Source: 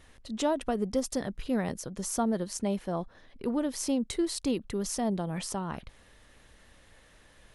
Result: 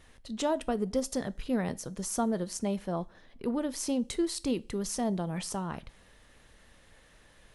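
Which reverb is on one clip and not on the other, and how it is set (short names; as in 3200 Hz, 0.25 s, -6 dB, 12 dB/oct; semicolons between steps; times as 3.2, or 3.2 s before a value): two-slope reverb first 0.33 s, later 2.1 s, from -27 dB, DRR 16 dB; gain -1 dB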